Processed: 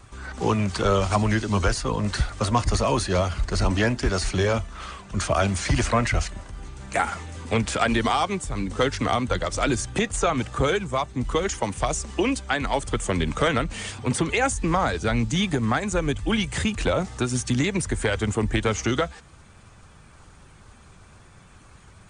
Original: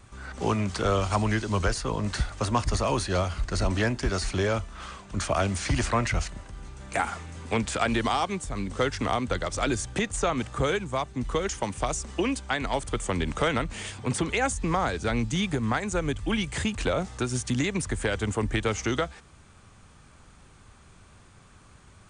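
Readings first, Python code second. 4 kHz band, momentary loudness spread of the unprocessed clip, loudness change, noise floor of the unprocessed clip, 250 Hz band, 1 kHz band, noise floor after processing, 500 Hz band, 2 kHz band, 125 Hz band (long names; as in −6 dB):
+3.5 dB, 5 LU, +3.5 dB, −54 dBFS, +3.5 dB, +3.5 dB, −50 dBFS, +3.5 dB, +3.5 dB, +3.5 dB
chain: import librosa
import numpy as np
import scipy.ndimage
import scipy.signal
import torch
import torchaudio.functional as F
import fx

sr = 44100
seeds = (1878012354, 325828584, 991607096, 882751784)

y = fx.spec_quant(x, sr, step_db=15)
y = y * 10.0 ** (4.0 / 20.0)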